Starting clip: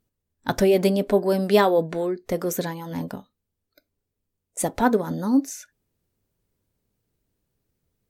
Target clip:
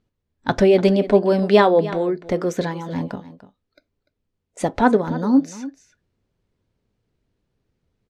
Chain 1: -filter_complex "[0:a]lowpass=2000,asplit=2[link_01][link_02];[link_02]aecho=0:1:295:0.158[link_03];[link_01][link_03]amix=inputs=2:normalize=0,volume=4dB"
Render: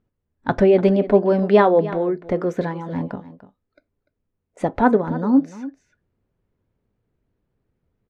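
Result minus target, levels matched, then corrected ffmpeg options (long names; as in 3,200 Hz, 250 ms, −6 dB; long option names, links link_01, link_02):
4,000 Hz band −8.5 dB
-filter_complex "[0:a]lowpass=4300,asplit=2[link_01][link_02];[link_02]aecho=0:1:295:0.158[link_03];[link_01][link_03]amix=inputs=2:normalize=0,volume=4dB"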